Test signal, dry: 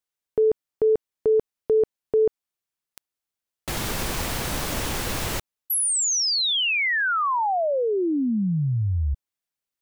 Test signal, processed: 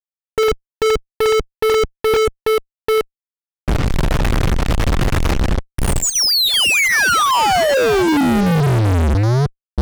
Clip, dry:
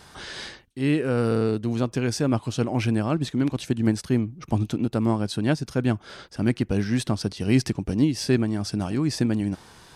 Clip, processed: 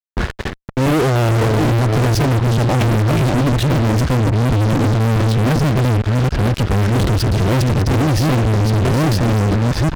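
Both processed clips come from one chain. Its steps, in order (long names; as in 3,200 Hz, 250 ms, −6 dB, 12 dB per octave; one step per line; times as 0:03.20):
delay that plays each chunk backwards 430 ms, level −5 dB
low-pass that shuts in the quiet parts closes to 1,500 Hz, open at −16.5 dBFS
RIAA equalisation playback
noise gate −34 dBFS, range −14 dB
dynamic equaliser 220 Hz, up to −5 dB, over −28 dBFS, Q 1.7
in parallel at −3 dB: brickwall limiter −10.5 dBFS
on the sum: square-wave tremolo 2.6 Hz, depth 60%, duty 85%
fuzz pedal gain 34 dB, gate −36 dBFS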